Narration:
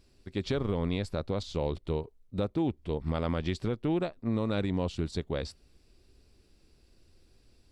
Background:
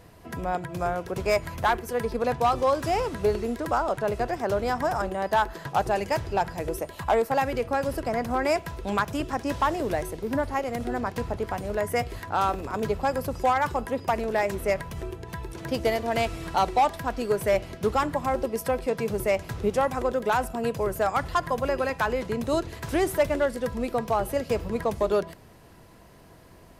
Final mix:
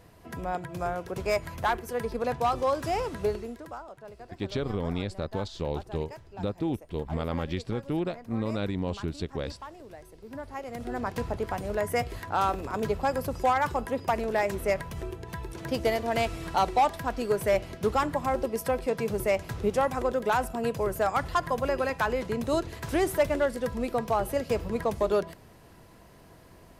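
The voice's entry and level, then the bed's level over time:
4.05 s, -0.5 dB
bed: 3.24 s -3.5 dB
3.9 s -19 dB
10 s -19 dB
11.11 s -1.5 dB

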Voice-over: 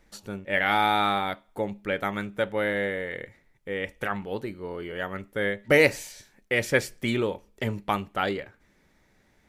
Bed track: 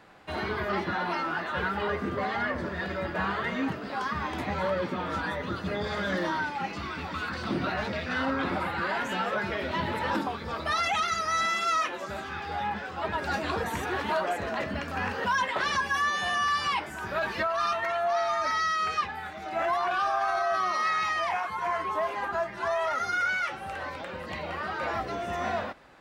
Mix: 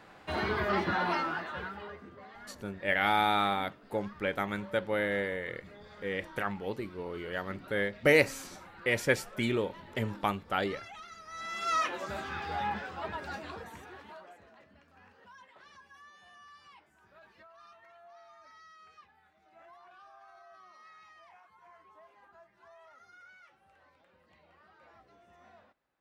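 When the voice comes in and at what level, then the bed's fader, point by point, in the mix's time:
2.35 s, -4.0 dB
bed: 1.15 s 0 dB
2.14 s -20.5 dB
11.25 s -20.5 dB
11.76 s -2 dB
12.72 s -2 dB
14.66 s -28.5 dB

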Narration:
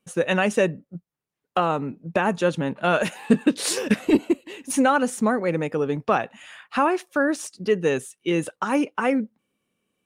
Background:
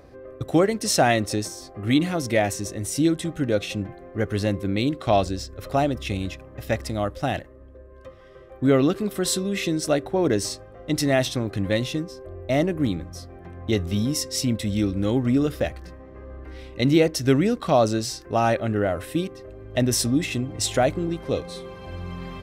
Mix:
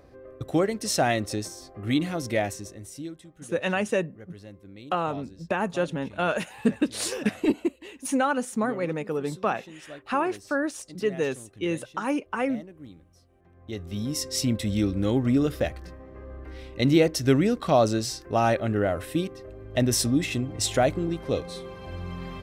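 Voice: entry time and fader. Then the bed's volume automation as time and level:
3.35 s, -5.0 dB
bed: 2.4 s -4.5 dB
3.31 s -21.5 dB
13.28 s -21.5 dB
14.29 s -1.5 dB

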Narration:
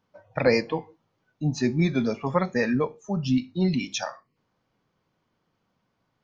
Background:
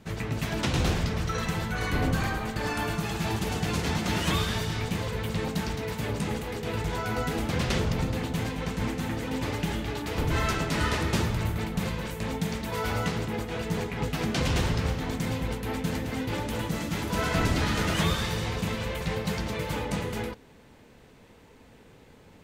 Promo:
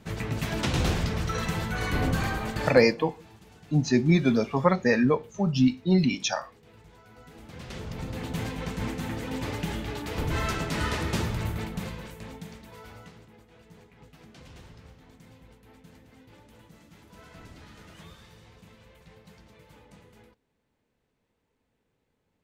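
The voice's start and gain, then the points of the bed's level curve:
2.30 s, +2.0 dB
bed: 2.64 s 0 dB
2.96 s -23.5 dB
7.12 s -23.5 dB
8.34 s -2 dB
11.57 s -2 dB
13.35 s -23 dB

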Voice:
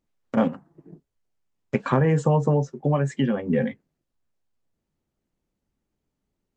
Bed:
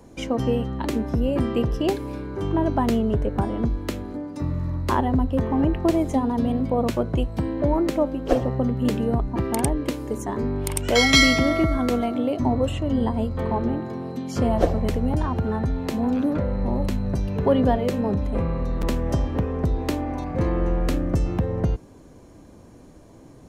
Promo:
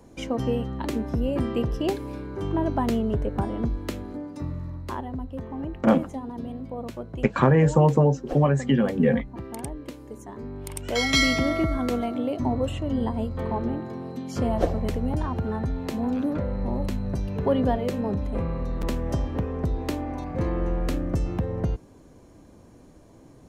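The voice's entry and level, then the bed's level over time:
5.50 s, +2.0 dB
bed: 4.26 s -3 dB
5.06 s -12 dB
10.37 s -12 dB
11.39 s -3.5 dB

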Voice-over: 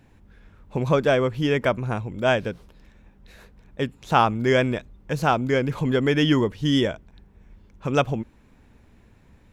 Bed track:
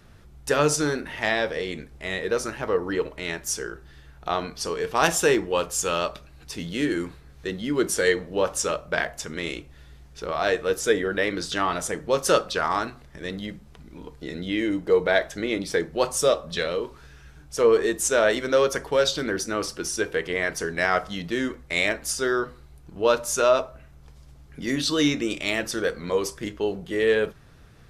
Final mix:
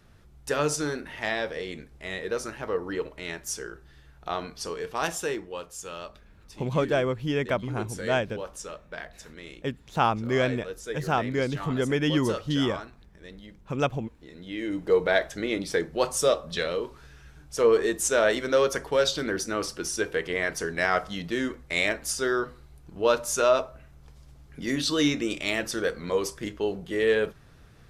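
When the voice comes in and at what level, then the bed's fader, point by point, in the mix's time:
5.85 s, -5.0 dB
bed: 4.69 s -5 dB
5.68 s -13.5 dB
14.33 s -13.5 dB
14.85 s -2 dB

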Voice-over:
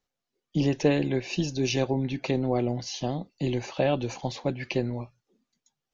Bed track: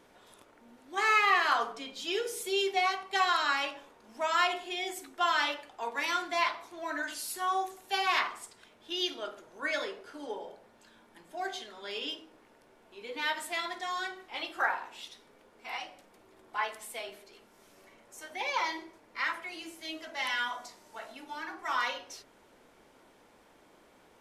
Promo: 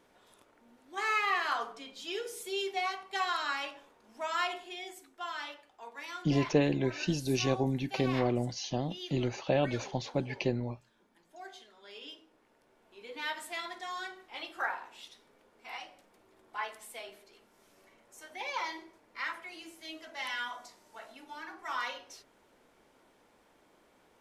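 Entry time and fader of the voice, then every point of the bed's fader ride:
5.70 s, -3.5 dB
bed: 4.56 s -5 dB
5.16 s -11.5 dB
11.86 s -11.5 dB
12.97 s -4.5 dB

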